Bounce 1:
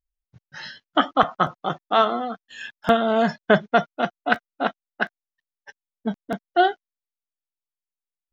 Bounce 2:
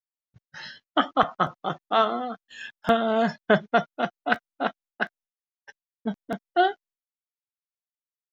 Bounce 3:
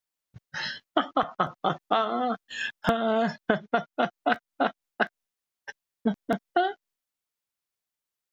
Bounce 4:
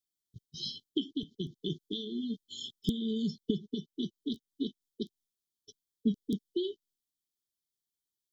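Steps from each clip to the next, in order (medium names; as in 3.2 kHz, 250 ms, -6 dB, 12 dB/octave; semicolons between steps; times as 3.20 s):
expander -47 dBFS; trim -3 dB
compression 12:1, threshold -28 dBFS, peak gain reduction 16 dB; trim +7.5 dB
brick-wall FIR band-stop 440–3000 Hz; trim -2 dB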